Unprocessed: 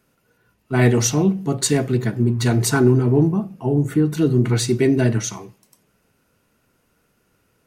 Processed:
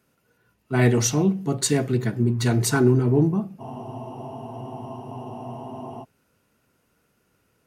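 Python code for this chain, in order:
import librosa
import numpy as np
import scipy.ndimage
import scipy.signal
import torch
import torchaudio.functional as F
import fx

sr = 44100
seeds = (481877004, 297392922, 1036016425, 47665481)

y = scipy.signal.sosfilt(scipy.signal.butter(2, 42.0, 'highpass', fs=sr, output='sos'), x)
y = fx.spec_freeze(y, sr, seeds[0], at_s=3.62, hold_s=2.4)
y = y * librosa.db_to_amplitude(-3.0)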